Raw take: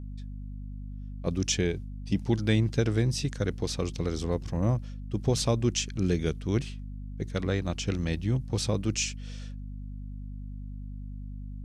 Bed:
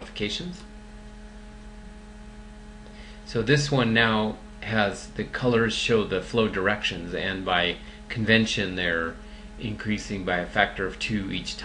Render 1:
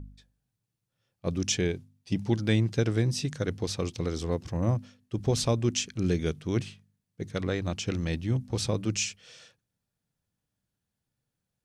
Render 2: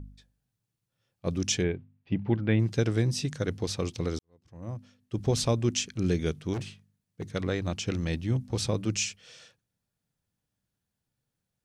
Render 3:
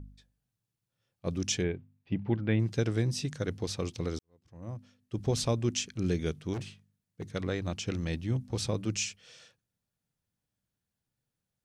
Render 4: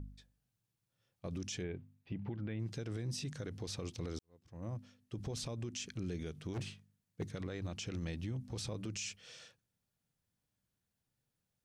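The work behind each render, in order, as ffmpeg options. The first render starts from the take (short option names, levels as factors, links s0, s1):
-af "bandreject=f=50:t=h:w=4,bandreject=f=100:t=h:w=4,bandreject=f=150:t=h:w=4,bandreject=f=200:t=h:w=4,bandreject=f=250:t=h:w=4"
-filter_complex "[0:a]asplit=3[s0][s1][s2];[s0]afade=t=out:st=1.62:d=0.02[s3];[s1]lowpass=f=2700:w=0.5412,lowpass=f=2700:w=1.3066,afade=t=in:st=1.62:d=0.02,afade=t=out:st=2.59:d=0.02[s4];[s2]afade=t=in:st=2.59:d=0.02[s5];[s3][s4][s5]amix=inputs=3:normalize=0,asettb=1/sr,asplit=3[s6][s7][s8];[s6]atrim=end=6.534[s9];[s7]atrim=start=6.53:end=7.26,asetpts=PTS-STARTPTS,afade=t=in:d=0.004:c=qsin,afade=t=out:st=0.726:d=0.004:c=qsin,asoftclip=type=hard:threshold=0.0335[s10];[s8]atrim=start=7.256[s11];[s9][s10]acrossfade=d=0.004:c1=hsin:c2=qsin[s12];[s12][s11]acrossfade=d=0.004:c1=qsin:c2=hsin,asplit=2[s13][s14];[s13]atrim=end=4.19,asetpts=PTS-STARTPTS,afade=t=out:st=4.186:d=0.004:c=hsin[s15];[s14]atrim=start=4.19,asetpts=PTS-STARTPTS,afade=t=in:d=0.97:c=qua[s16];[s15][s16]concat=n=2:v=0:a=1"
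-af "volume=0.708"
-af "acompressor=threshold=0.0251:ratio=6,alimiter=level_in=2.66:limit=0.0631:level=0:latency=1:release=48,volume=0.376"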